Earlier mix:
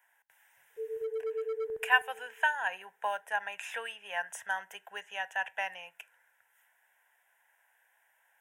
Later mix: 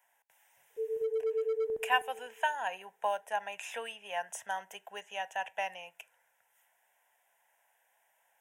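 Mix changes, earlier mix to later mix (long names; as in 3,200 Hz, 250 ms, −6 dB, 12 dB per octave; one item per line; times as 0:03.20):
background: send +6.0 dB
master: add graphic EQ with 15 bands 250 Hz +9 dB, 630 Hz +4 dB, 1,600 Hz −8 dB, 6,300 Hz +3 dB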